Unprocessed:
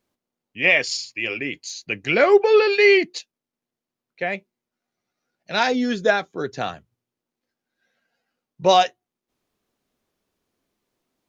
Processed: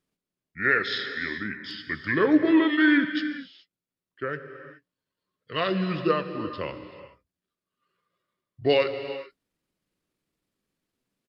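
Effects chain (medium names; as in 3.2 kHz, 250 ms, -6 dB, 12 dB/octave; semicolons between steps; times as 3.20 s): peaking EQ 1.1 kHz -8 dB 0.34 oct; pitch shift -5 st; gated-style reverb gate 450 ms flat, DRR 8.5 dB; trim -5 dB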